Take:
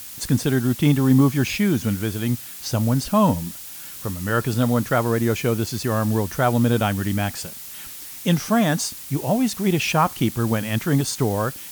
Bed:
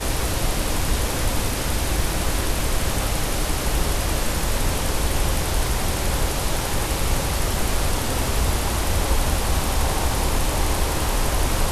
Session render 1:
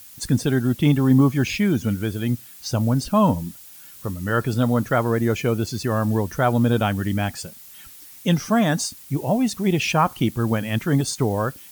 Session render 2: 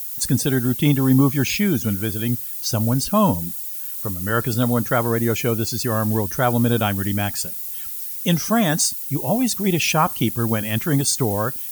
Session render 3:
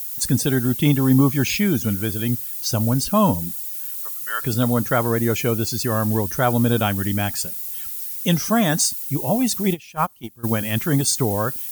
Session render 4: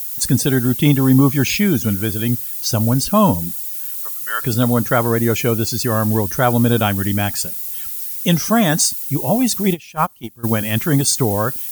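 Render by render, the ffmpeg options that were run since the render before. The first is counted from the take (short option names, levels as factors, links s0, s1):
-af "afftdn=nr=9:nf=-37"
-af "aemphasis=mode=production:type=50kf"
-filter_complex "[0:a]asettb=1/sr,asplit=3[s0][s1][s2];[s0]atrim=end=3.984[s3];[s1]atrim=start=3.98:end=4.43,asetpts=PTS-STARTPTS,afade=t=in:d=0.004:c=qsin,afade=t=out:st=0.446:d=0.004:c=qsin,highpass=1400[s4];[s2]atrim=start=4.426[s5];[s3][s4]acrossfade=d=0.004:c1=hsin:c2=qsin[s6];[s6][s5]acrossfade=d=0.004:c1=qsin:c2=hsin,asplit=3[s7][s8][s9];[s7]afade=t=out:st=9.73:d=0.02[s10];[s8]agate=range=0.0708:threshold=0.158:ratio=16:release=100:detection=peak,afade=t=in:st=9.73:d=0.02,afade=t=out:st=10.43:d=0.02[s11];[s9]afade=t=in:st=10.43:d=0.02[s12];[s10][s11][s12]amix=inputs=3:normalize=0"
-af "volume=1.5,alimiter=limit=0.794:level=0:latency=1"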